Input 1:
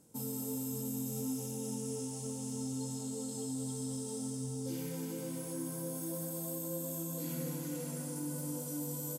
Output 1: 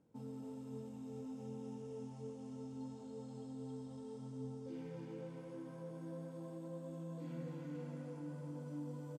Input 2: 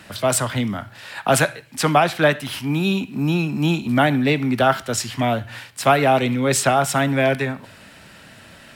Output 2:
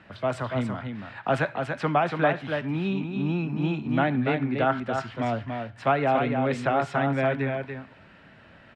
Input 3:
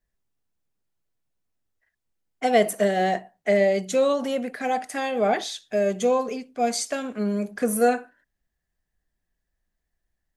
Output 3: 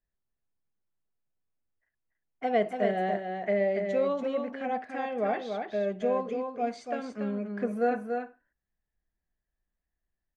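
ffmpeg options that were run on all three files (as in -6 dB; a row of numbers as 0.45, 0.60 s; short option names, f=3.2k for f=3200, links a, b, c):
-filter_complex "[0:a]lowpass=2.3k,asplit=2[a][b];[b]aecho=0:1:286:0.531[c];[a][c]amix=inputs=2:normalize=0,volume=-7dB"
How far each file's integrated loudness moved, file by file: -9.5, -7.0, -6.5 LU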